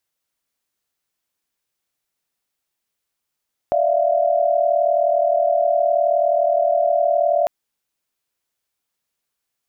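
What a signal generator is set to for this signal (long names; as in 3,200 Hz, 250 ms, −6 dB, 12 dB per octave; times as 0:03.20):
held notes D5/E5/F5 sine, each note −19 dBFS 3.75 s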